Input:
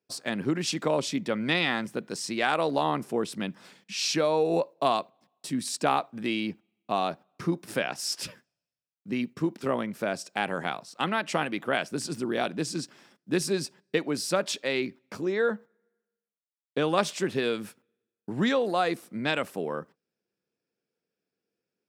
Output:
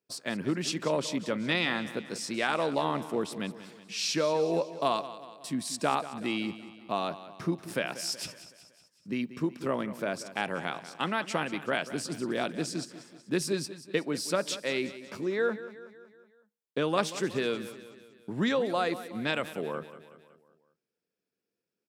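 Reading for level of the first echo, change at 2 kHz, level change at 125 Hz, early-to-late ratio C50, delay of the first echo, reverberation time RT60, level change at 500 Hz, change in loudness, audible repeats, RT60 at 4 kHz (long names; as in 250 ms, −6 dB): −14.5 dB, −2.5 dB, −2.5 dB, no reverb audible, 186 ms, no reverb audible, −2.5 dB, −2.5 dB, 4, no reverb audible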